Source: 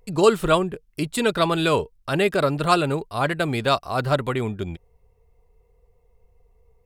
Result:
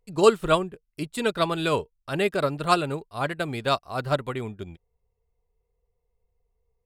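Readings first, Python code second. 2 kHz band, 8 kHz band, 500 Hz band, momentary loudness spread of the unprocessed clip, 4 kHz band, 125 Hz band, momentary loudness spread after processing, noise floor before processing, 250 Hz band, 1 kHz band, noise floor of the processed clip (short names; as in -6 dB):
-4.0 dB, -4.0 dB, -3.0 dB, 10 LU, -3.5 dB, -5.5 dB, 14 LU, -62 dBFS, -5.0 dB, -3.0 dB, -77 dBFS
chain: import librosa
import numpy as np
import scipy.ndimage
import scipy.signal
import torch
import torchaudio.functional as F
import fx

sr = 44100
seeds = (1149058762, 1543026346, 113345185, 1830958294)

y = fx.upward_expand(x, sr, threshold_db=-41.0, expansion=1.5)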